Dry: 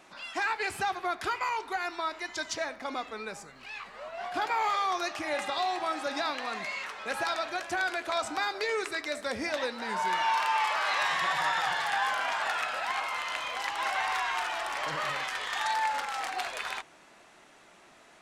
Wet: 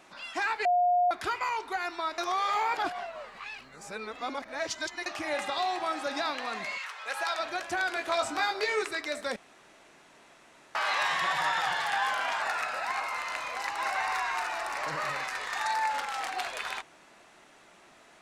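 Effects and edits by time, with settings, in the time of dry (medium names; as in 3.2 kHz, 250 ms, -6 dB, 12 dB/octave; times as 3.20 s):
0.65–1.11 s: bleep 713 Hz -21 dBFS
2.18–5.06 s: reverse
6.77–7.38 s: high-pass 1.1 kHz -> 470 Hz
7.94–8.83 s: doubling 21 ms -3 dB
9.36–10.75 s: room tone
12.41–15.90 s: peaking EQ 3.2 kHz -12.5 dB 0.2 oct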